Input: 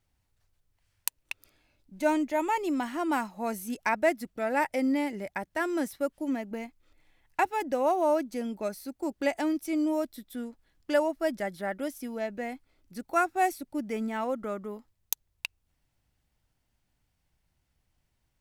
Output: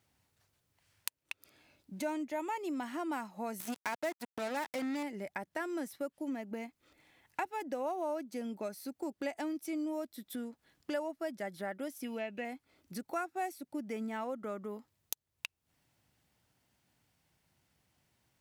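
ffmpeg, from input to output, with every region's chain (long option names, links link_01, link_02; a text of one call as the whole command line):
ffmpeg -i in.wav -filter_complex "[0:a]asettb=1/sr,asplit=3[link_01][link_02][link_03];[link_01]atrim=end=3.604[link_04];[link_02]atrim=start=3.6:end=5.03,asetpts=PTS-STARTPTS,afade=type=in:duration=0.004:curve=qsin,afade=type=out:start_time=1.426:duration=0.004:curve=qsin,acompressor=mode=upward:threshold=-29dB:ratio=2.5:attack=3.2:release=140:knee=2.83:detection=peak,acrusher=bits=4:mix=0:aa=0.5[link_05];[link_03]atrim=start=5.026[link_06];[link_04][link_05]acrossfade=duration=0.004:curve1=hsin:curve2=qsin[link_07];[link_07][link_06]acrossfade=duration=0.004:curve1=qsin:curve2=hsin,asettb=1/sr,asplit=3[link_08][link_09][link_10];[link_08]atrim=end=12.044[link_11];[link_09]atrim=start=12.04:end=12.45,asetpts=PTS-STARTPTS,afade=type=in:duration=0.004:curve=qsin,afade=type=out:start_time=0.406:duration=0.004:curve=qsin,acrossover=split=2600[link_12][link_13];[link_13]acompressor=threshold=-54dB:ratio=4:attack=1:release=60[link_14];[link_12][link_14]amix=inputs=2:normalize=0,equalizer=frequency=2700:width_type=o:width=0.55:gain=15[link_15];[link_10]atrim=start=12.446[link_16];[link_11][link_15]acrossfade=duration=0.004:curve1=hsin:curve2=qsin[link_17];[link_17][link_16]acrossfade=duration=0.004:curve1=qsin:curve2=hsin,highpass=120,acompressor=threshold=-46dB:ratio=2.5,volume=4.5dB" out.wav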